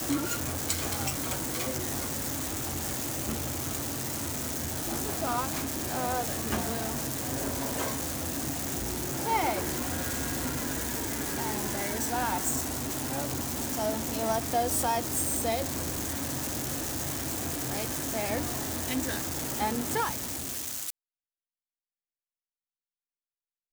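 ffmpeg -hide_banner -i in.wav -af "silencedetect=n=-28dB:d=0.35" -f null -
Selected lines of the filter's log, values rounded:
silence_start: 20.90
silence_end: 23.73 | silence_duration: 2.83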